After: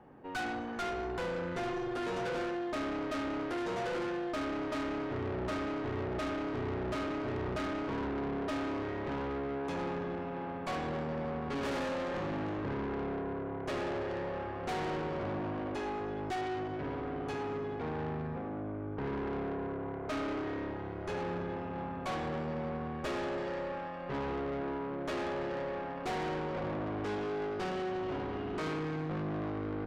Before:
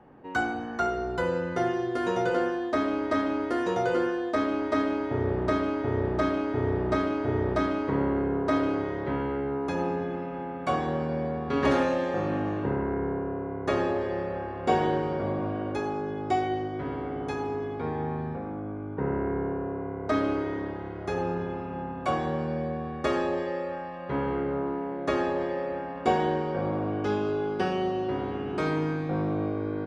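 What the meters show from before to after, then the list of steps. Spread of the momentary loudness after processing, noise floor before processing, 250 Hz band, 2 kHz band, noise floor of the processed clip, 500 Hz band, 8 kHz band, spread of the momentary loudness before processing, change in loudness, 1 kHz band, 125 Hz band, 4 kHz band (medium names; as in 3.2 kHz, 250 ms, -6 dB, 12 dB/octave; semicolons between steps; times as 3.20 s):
3 LU, -36 dBFS, -8.0 dB, -6.0 dB, -40 dBFS, -8.0 dB, no reading, 7 LU, -7.5 dB, -7.5 dB, -7.5 dB, -3.5 dB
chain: valve stage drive 33 dB, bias 0.6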